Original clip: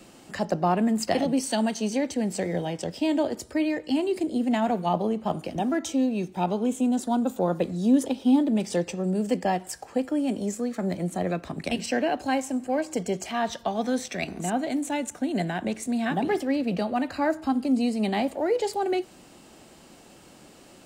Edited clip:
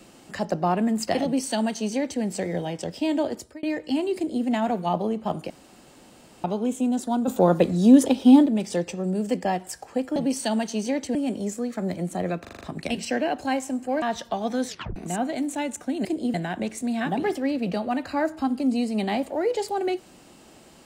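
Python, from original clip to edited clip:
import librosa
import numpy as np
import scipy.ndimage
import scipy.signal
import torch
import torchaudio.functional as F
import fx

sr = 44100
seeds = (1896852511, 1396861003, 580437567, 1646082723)

y = fx.edit(x, sr, fx.duplicate(start_s=1.23, length_s=0.99, to_s=10.16),
    fx.fade_out_span(start_s=3.34, length_s=0.29),
    fx.duplicate(start_s=4.16, length_s=0.29, to_s=15.39),
    fx.room_tone_fill(start_s=5.5, length_s=0.94),
    fx.clip_gain(start_s=7.28, length_s=1.18, db=6.5),
    fx.stutter(start_s=11.42, slice_s=0.04, count=6),
    fx.cut(start_s=12.83, length_s=0.53),
    fx.tape_stop(start_s=14.02, length_s=0.28), tone=tone)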